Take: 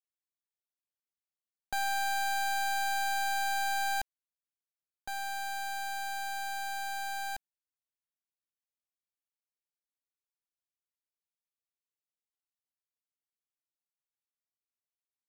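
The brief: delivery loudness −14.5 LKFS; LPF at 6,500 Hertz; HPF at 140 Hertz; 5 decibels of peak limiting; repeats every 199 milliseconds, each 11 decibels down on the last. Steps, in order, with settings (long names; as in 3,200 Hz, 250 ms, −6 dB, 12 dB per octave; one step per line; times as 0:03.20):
high-pass filter 140 Hz
low-pass filter 6,500 Hz
brickwall limiter −30.5 dBFS
repeating echo 199 ms, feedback 28%, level −11 dB
level +22.5 dB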